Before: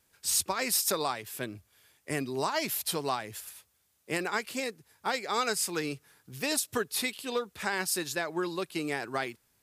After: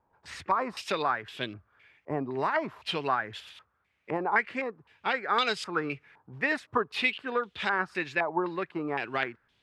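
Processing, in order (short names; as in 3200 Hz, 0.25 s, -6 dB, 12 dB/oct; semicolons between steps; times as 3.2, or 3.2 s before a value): stepped low-pass 3.9 Hz 910–3300 Hz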